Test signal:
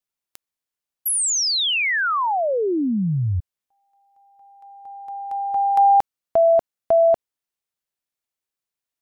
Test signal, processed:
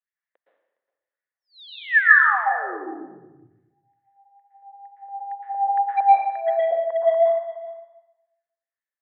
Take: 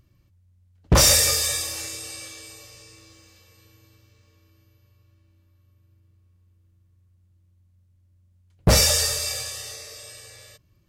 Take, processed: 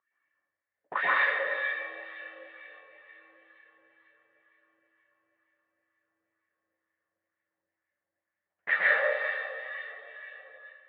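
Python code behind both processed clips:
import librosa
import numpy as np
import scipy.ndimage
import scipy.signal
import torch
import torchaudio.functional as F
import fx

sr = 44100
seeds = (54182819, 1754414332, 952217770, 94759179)

p1 = fx.wah_lfo(x, sr, hz=2.1, low_hz=530.0, high_hz=2000.0, q=4.4)
p2 = scipy.signal.sosfilt(scipy.signal.butter(2, 300.0, 'highpass', fs=sr, output='sos'), p1)
p3 = fx.rider(p2, sr, range_db=5, speed_s=2.0)
p4 = p2 + (p3 * librosa.db_to_amplitude(-2.0))
p5 = np.clip(p4, -10.0 ** (-8.5 / 20.0), 10.0 ** (-8.5 / 20.0))
p6 = scipy.signal.sosfilt(scipy.signal.butter(12, 3700.0, 'lowpass', fs=sr, output='sos'), p5)
p7 = fx.peak_eq(p6, sr, hz=1800.0, db=12.5, octaves=0.34)
p8 = p7 + fx.echo_single(p7, sr, ms=412, db=-17.5, dry=0)
p9 = fx.rev_plate(p8, sr, seeds[0], rt60_s=0.98, hf_ratio=0.9, predelay_ms=105, drr_db=-5.5)
y = p9 * librosa.db_to_amplitude(-8.5)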